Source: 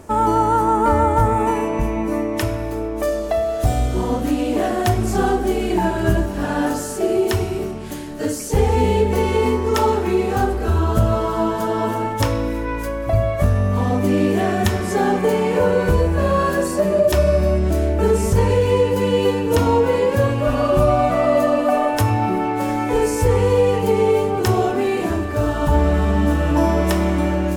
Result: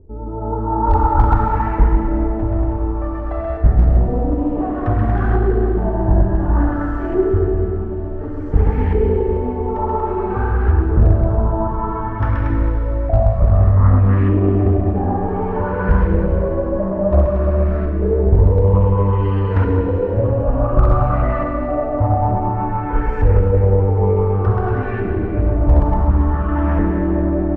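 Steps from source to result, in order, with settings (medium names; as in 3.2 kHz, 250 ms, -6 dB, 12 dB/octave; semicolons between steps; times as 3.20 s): tilt EQ -4 dB/octave; flange 1.1 Hz, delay 2.1 ms, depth 2.6 ms, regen +46%; amplifier tone stack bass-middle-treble 5-5-5; bouncing-ball echo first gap 130 ms, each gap 0.8×, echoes 5; LFO low-pass saw up 0.56 Hz 410–1800 Hz; hard clipper -14 dBFS, distortion -23 dB; level rider gain up to 6 dB; Schroeder reverb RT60 3.3 s, combs from 31 ms, DRR 1 dB; loudspeaker Doppler distortion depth 0.36 ms; trim +3 dB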